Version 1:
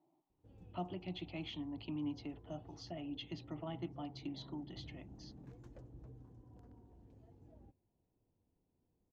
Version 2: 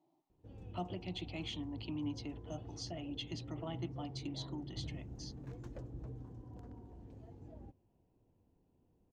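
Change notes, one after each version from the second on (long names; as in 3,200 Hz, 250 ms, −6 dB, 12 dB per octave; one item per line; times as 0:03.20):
speech: remove high-frequency loss of the air 180 metres
background +8.0 dB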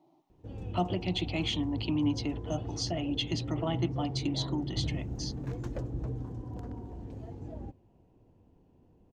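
speech +11.0 dB
background +11.0 dB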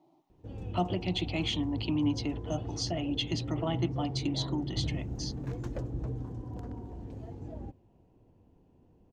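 nothing changed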